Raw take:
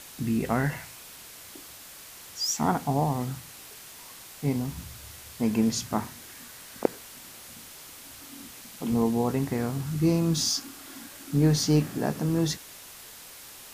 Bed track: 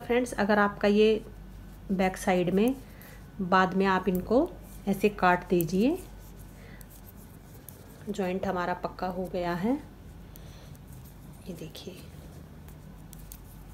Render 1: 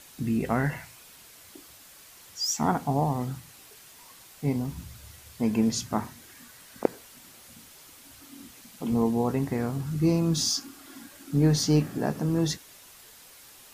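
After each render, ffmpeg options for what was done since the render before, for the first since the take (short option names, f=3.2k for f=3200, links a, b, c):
-af "afftdn=nr=6:nf=-46"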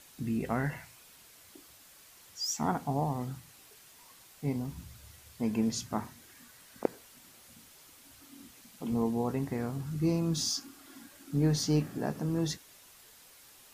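-af "volume=-5.5dB"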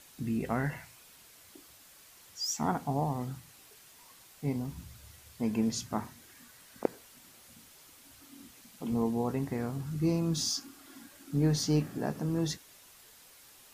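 -af anull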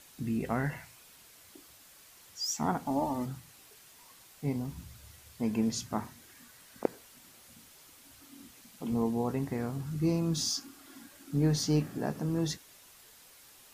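-filter_complex "[0:a]asettb=1/sr,asplit=3[a][b][c];[a]atrim=end=2.864[d];[b]atrim=start=2.86:end=3.26,asetpts=PTS-STARTPTS,afade=t=in:d=0.004:c=qsin,afade=t=out:st=0.396:d=0.004:c=qsin,aecho=1:1:3.4:0.8,atrim=end_sample=17640[e];[c]atrim=start=3.256[f];[d][e]acrossfade=d=0.004:c1=hsin:c2=qsin[g];[g][f]acrossfade=d=0.004:c1=qsin:c2=hsin"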